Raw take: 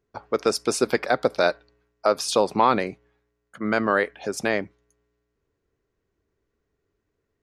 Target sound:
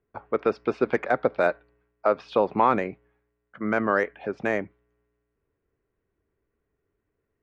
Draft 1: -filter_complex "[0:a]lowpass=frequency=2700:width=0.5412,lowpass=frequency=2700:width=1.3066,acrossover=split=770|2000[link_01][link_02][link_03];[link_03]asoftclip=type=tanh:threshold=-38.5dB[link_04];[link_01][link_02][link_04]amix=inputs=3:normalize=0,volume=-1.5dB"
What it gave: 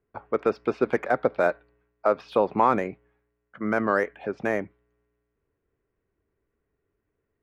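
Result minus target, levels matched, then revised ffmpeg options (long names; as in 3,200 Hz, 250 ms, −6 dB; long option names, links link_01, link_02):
soft clipping: distortion +9 dB
-filter_complex "[0:a]lowpass=frequency=2700:width=0.5412,lowpass=frequency=2700:width=1.3066,acrossover=split=770|2000[link_01][link_02][link_03];[link_03]asoftclip=type=tanh:threshold=-28dB[link_04];[link_01][link_02][link_04]amix=inputs=3:normalize=0,volume=-1.5dB"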